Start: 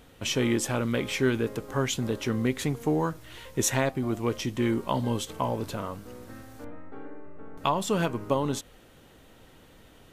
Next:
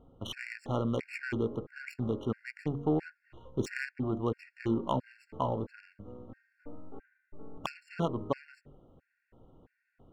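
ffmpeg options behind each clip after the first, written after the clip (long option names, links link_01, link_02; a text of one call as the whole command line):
ffmpeg -i in.wav -af "adynamicsmooth=sensitivity=2:basefreq=930,bandreject=frequency=47.44:width_type=h:width=4,bandreject=frequency=94.88:width_type=h:width=4,bandreject=frequency=142.32:width_type=h:width=4,bandreject=frequency=189.76:width_type=h:width=4,bandreject=frequency=237.2:width_type=h:width=4,bandreject=frequency=284.64:width_type=h:width=4,bandreject=frequency=332.08:width_type=h:width=4,bandreject=frequency=379.52:width_type=h:width=4,bandreject=frequency=426.96:width_type=h:width=4,bandreject=frequency=474.4:width_type=h:width=4,bandreject=frequency=521.84:width_type=h:width=4,bandreject=frequency=569.28:width_type=h:width=4,bandreject=frequency=616.72:width_type=h:width=4,afftfilt=real='re*gt(sin(2*PI*1.5*pts/sr)*(1-2*mod(floor(b*sr/1024/1400),2)),0)':imag='im*gt(sin(2*PI*1.5*pts/sr)*(1-2*mod(floor(b*sr/1024/1400),2)),0)':win_size=1024:overlap=0.75,volume=-2dB" out.wav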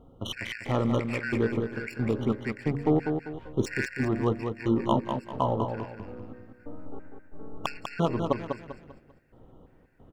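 ffmpeg -i in.wav -af "aecho=1:1:197|394|591|788:0.501|0.175|0.0614|0.0215,volume=5dB" out.wav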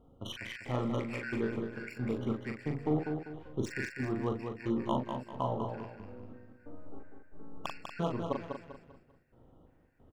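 ffmpeg -i in.wav -filter_complex "[0:a]asplit=2[link_01][link_02];[link_02]adelay=40,volume=-5dB[link_03];[link_01][link_03]amix=inputs=2:normalize=0,volume=-8dB" out.wav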